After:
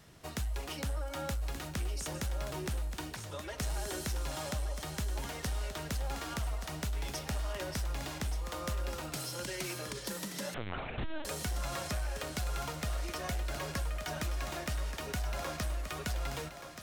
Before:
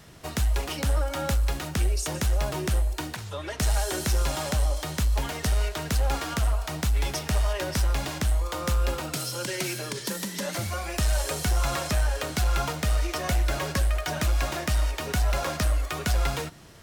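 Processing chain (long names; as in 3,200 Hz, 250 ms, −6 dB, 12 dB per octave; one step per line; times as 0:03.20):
downward compressor, threshold −24 dBFS, peak gain reduction 4.5 dB
on a send: feedback echo with a high-pass in the loop 1,178 ms, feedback 40%, high-pass 190 Hz, level −9 dB
0:10.54–0:11.25: on the sum: linear-prediction vocoder at 8 kHz pitch kept
level −8 dB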